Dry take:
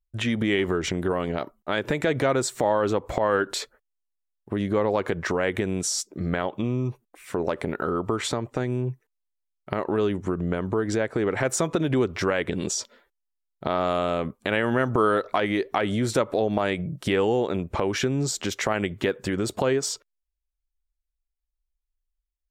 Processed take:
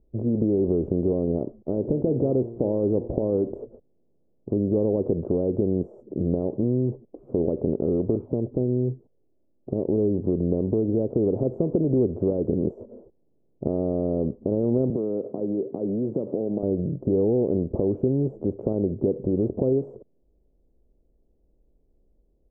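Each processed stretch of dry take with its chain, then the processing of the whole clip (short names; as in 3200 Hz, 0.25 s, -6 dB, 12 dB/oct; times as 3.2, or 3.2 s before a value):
1.69–3.5 high shelf 3500 Hz -11 dB + de-hum 115.9 Hz, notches 9
8.15–10.17 steep low-pass 3000 Hz + envelope flanger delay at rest 3.6 ms, full sweep at -24 dBFS
14.9–16.63 compressor, threshold -25 dBFS + HPF 150 Hz 24 dB/oct
whole clip: per-bin compression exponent 0.6; inverse Chebyshev low-pass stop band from 1700 Hz, stop band 60 dB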